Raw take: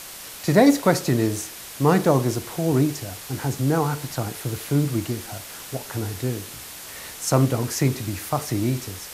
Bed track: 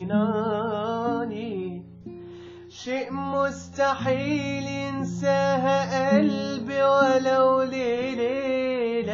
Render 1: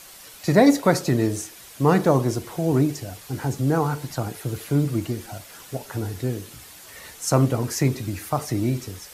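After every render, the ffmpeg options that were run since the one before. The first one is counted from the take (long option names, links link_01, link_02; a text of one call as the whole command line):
ffmpeg -i in.wav -af "afftdn=noise_reduction=8:noise_floor=-39" out.wav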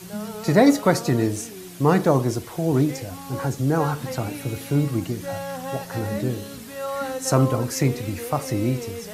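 ffmpeg -i in.wav -i bed.wav -filter_complex "[1:a]volume=-9.5dB[link_01];[0:a][link_01]amix=inputs=2:normalize=0" out.wav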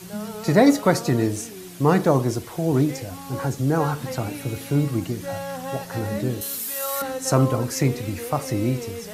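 ffmpeg -i in.wav -filter_complex "[0:a]asettb=1/sr,asplit=3[link_01][link_02][link_03];[link_01]atrim=end=6.414[link_04];[link_02]atrim=start=6.41:end=7.02,asetpts=PTS-STARTPTS,afade=type=in:duration=0.004:curve=qsin,afade=type=out:start_time=0.606:duration=0.004:curve=qsin,aemphasis=mode=production:type=riaa[link_05];[link_03]atrim=start=7.016[link_06];[link_04][link_05]acrossfade=duration=0.004:curve1=hsin:curve2=qsin[link_07];[link_07][link_06]acrossfade=duration=0.004:curve1=qsin:curve2=hsin" out.wav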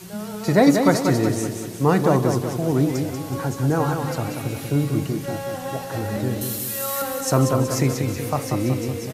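ffmpeg -i in.wav -af "aecho=1:1:187|374|561|748|935|1122:0.501|0.241|0.115|0.0554|0.0266|0.0128" out.wav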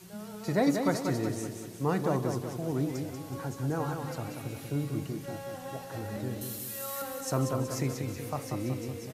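ffmpeg -i in.wav -af "volume=-11dB" out.wav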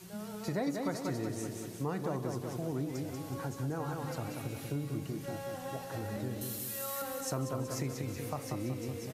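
ffmpeg -i in.wav -af "acompressor=threshold=-34dB:ratio=2.5" out.wav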